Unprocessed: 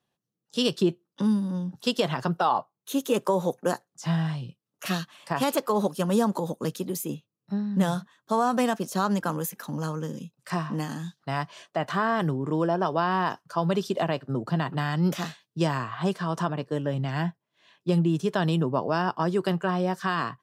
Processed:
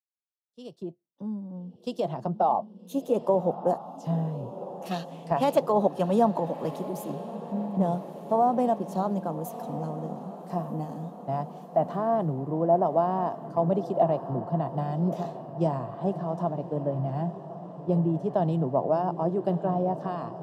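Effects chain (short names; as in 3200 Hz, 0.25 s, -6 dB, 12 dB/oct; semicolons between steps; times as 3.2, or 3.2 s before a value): opening faded in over 2.54 s; 4.91–6.76 bell 2200 Hz +10.5 dB 2 oct; diffused feedback echo 1.249 s, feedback 63%, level -11 dB; in parallel at +1.5 dB: compressor, threshold -31 dBFS, peak gain reduction 14.5 dB; on the sum: EQ curve 450 Hz 0 dB, 690 Hz +7 dB, 1500 Hz -16 dB; three-band expander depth 70%; gain -5 dB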